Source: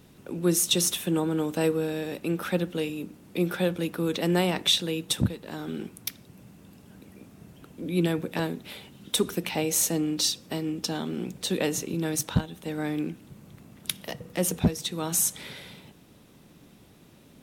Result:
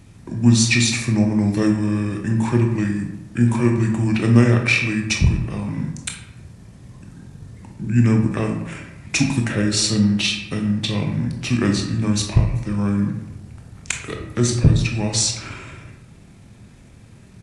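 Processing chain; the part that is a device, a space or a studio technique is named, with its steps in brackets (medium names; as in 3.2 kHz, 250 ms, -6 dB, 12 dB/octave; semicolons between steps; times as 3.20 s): monster voice (pitch shift -7 st; bass shelf 190 Hz +6 dB; reverberation RT60 0.95 s, pre-delay 19 ms, DRR 2.5 dB); trim +4 dB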